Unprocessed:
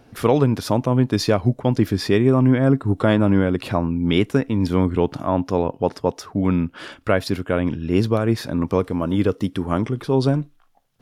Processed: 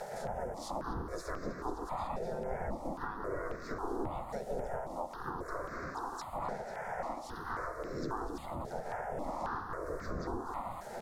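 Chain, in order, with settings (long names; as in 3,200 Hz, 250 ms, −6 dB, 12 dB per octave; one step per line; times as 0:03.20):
wind on the microphone 460 Hz −20 dBFS
Butterworth band-reject 2,700 Hz, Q 0.67
harmonic and percussive parts rebalanced percussive −8 dB
background noise violet −50 dBFS
gate on every frequency bin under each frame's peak −15 dB weak
downward compressor 12 to 1, threshold −40 dBFS, peak gain reduction 17 dB
tilt shelving filter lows +3.5 dB, about 1,200 Hz
mains-hum notches 60/120/180 Hz
on a send: delay that swaps between a low-pass and a high-pass 123 ms, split 1,100 Hz, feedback 82%, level −11 dB
on the sum: pitch-shifted copies added −5 semitones −4 dB, +5 semitones −5 dB
low-pass filter 6,700 Hz 12 dB per octave
step-sequenced phaser 3.7 Hz 300–3,100 Hz
level +4.5 dB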